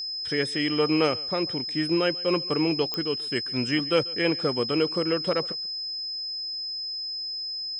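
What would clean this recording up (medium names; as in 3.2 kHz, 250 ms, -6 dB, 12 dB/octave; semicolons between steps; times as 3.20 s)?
de-click; band-stop 5.1 kHz, Q 30; inverse comb 140 ms -22.5 dB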